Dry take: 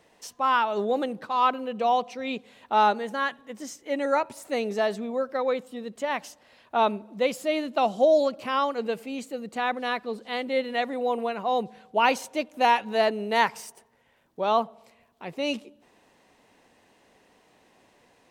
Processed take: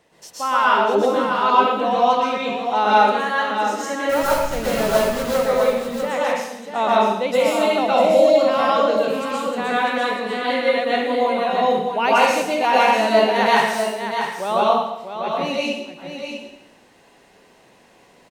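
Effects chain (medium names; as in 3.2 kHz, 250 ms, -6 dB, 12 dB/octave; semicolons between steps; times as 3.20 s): 4.09–5.23 s: send-on-delta sampling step -26 dBFS; delay 646 ms -7.5 dB; plate-style reverb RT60 0.83 s, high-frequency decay 1×, pre-delay 105 ms, DRR -7 dB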